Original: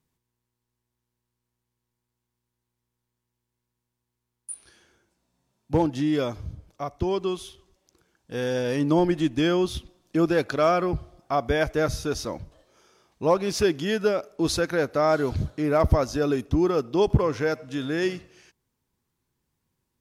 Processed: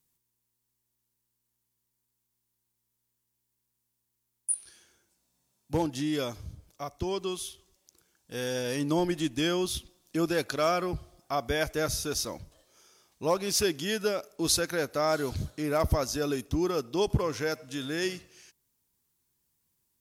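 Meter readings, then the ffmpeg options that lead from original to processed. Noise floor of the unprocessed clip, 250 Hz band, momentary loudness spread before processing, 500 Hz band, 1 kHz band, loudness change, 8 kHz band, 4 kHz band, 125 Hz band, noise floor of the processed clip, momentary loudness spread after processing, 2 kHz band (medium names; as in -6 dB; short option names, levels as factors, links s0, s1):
-83 dBFS, -6.5 dB, 14 LU, -6.0 dB, -5.5 dB, -5.0 dB, +5.5 dB, +1.5 dB, -6.5 dB, -81 dBFS, 10 LU, -3.5 dB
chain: -af "crystalizer=i=3.5:c=0,volume=0.473"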